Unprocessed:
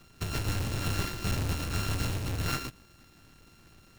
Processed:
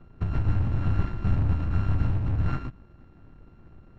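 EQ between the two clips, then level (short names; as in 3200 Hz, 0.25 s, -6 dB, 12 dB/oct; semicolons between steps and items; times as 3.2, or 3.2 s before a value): Bessel low-pass 890 Hz, order 2; dynamic EQ 460 Hz, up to -8 dB, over -54 dBFS, Q 1.4; low shelf 75 Hz +7 dB; +5.0 dB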